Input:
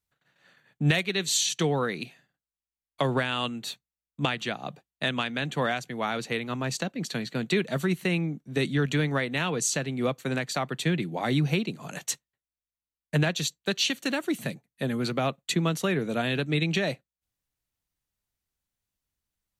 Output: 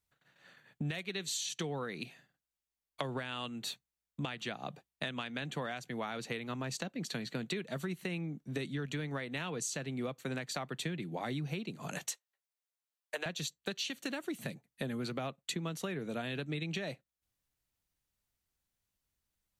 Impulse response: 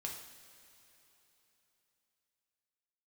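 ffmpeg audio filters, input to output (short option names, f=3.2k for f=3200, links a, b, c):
-filter_complex "[0:a]asettb=1/sr,asplit=3[a][b][c];[a]atrim=end=12.114[d];[b]atrim=start=12.11:end=13.26,asetpts=PTS-STARTPTS,afade=t=in:d=0.004:c=qsin,afade=t=out:st=1.146:d=0.004:c=qsin,highpass=f=460:w=0.5412,highpass=f=460:w=1.3066[e];[c]atrim=start=13.256[f];[d][e]acrossfade=d=0.004:c1=hsin:c2=qsin[g];[g][f]acrossfade=d=0.004:c1=qsin:c2=hsin,acompressor=threshold=-36dB:ratio=5"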